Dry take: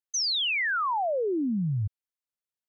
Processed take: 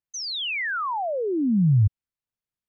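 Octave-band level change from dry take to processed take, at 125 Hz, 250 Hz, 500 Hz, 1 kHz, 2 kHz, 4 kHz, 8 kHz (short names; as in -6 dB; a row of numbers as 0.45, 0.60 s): +10.0 dB, +6.0 dB, +1.0 dB, 0.0 dB, -0.5 dB, -2.5 dB, n/a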